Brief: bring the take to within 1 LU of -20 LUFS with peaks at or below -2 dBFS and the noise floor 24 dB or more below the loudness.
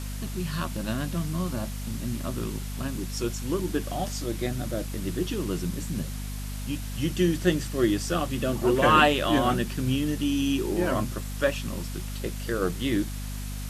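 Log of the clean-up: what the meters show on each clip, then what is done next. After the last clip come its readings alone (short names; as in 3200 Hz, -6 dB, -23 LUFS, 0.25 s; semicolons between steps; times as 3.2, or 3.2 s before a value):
hum 50 Hz; harmonics up to 250 Hz; hum level -32 dBFS; noise floor -34 dBFS; noise floor target -52 dBFS; loudness -27.5 LUFS; peak -5.0 dBFS; loudness target -20.0 LUFS
-> notches 50/100/150/200/250 Hz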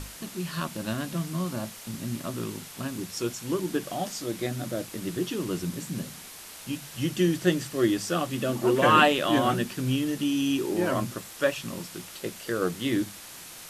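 hum none; noise floor -44 dBFS; noise floor target -52 dBFS
-> denoiser 8 dB, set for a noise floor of -44 dBFS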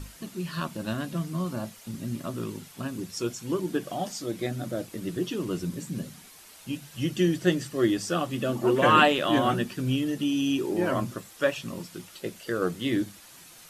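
noise floor -50 dBFS; noise floor target -52 dBFS
-> denoiser 6 dB, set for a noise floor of -50 dBFS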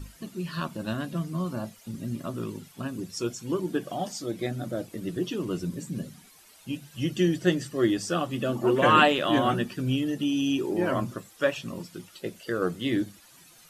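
noise floor -55 dBFS; loudness -28.0 LUFS; peak -5.0 dBFS; loudness target -20.0 LUFS
-> gain +8 dB; limiter -2 dBFS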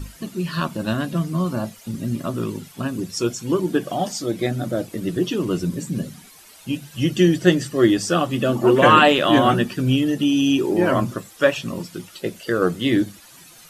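loudness -20.5 LUFS; peak -2.0 dBFS; noise floor -47 dBFS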